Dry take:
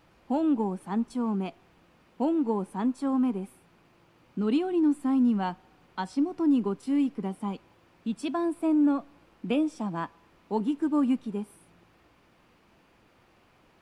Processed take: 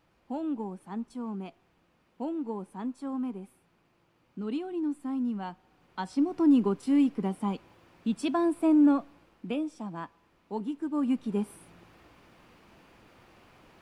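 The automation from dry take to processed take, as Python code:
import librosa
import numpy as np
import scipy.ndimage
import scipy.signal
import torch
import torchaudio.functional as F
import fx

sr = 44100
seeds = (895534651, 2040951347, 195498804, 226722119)

y = fx.gain(x, sr, db=fx.line((5.51, -7.5), (6.4, 2.0), (8.93, 2.0), (9.59, -6.0), (10.91, -6.0), (11.42, 4.5)))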